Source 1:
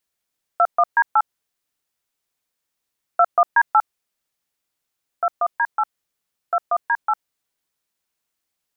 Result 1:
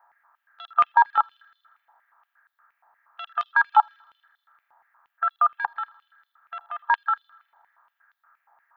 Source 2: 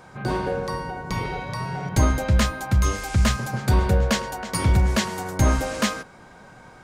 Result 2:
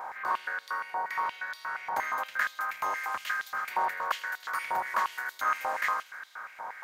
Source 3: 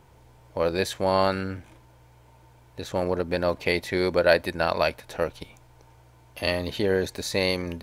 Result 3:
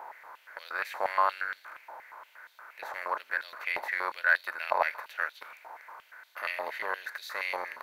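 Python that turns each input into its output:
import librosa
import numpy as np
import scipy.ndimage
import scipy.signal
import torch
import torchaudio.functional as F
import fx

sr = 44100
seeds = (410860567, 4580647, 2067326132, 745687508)

p1 = fx.bin_compress(x, sr, power=0.6)
p2 = fx.band_shelf(p1, sr, hz=5100.0, db=-14.0, octaves=2.3)
p3 = 10.0 ** (-3.5 / 20.0) * np.tanh(p2 / 10.0 ** (-3.5 / 20.0))
p4 = p3 + fx.echo_wet_highpass(p3, sr, ms=80, feedback_pct=69, hz=4000.0, wet_db=-12, dry=0)
p5 = fx.filter_held_highpass(p4, sr, hz=8.5, low_hz=860.0, high_hz=3600.0)
y = F.gain(torch.from_numpy(p5), -7.5).numpy()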